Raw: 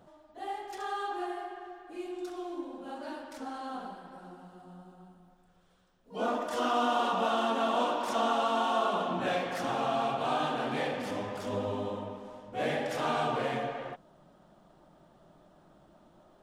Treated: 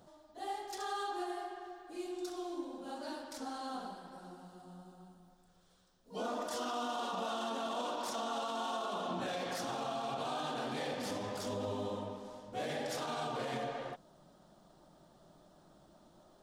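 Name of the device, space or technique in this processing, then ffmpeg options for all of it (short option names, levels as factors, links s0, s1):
over-bright horn tweeter: -af "highshelf=f=3400:t=q:w=1.5:g=6.5,alimiter=level_in=1.41:limit=0.0631:level=0:latency=1:release=66,volume=0.708,volume=0.75"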